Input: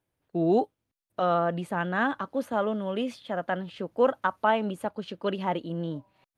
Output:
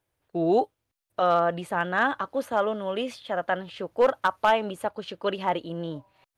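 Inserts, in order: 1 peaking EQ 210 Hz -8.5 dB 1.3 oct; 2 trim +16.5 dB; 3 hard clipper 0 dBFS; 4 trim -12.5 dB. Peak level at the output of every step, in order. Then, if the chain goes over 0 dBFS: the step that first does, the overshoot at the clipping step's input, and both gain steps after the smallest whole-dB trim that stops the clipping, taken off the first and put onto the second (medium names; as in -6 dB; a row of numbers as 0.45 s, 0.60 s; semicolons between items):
-11.0 dBFS, +5.5 dBFS, 0.0 dBFS, -12.5 dBFS; step 2, 5.5 dB; step 2 +10.5 dB, step 4 -6.5 dB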